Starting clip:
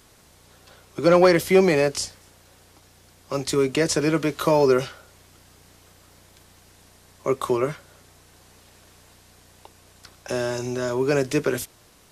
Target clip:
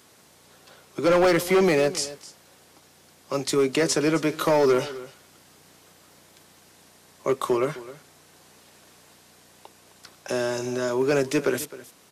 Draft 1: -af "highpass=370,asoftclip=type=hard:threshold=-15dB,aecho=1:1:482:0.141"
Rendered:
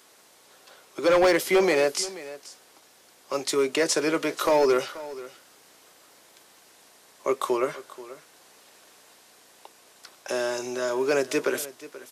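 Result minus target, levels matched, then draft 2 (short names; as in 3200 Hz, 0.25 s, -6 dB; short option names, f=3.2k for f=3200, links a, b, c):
echo 0.221 s late; 125 Hz band -10.5 dB
-af "highpass=150,asoftclip=type=hard:threshold=-15dB,aecho=1:1:261:0.141"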